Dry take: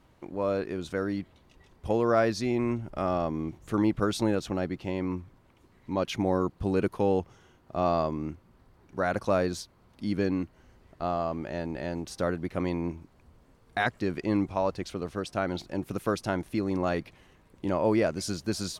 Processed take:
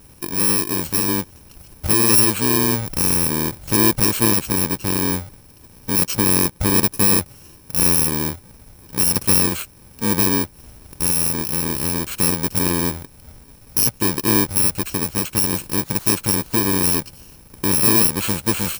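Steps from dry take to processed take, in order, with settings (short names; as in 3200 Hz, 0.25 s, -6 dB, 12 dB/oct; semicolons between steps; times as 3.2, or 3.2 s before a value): FFT order left unsorted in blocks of 64 samples; in parallel at +2 dB: compressor 6:1, threshold -36 dBFS, peak gain reduction 16 dB; on the sum: short-mantissa float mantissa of 2-bit; gain +7.5 dB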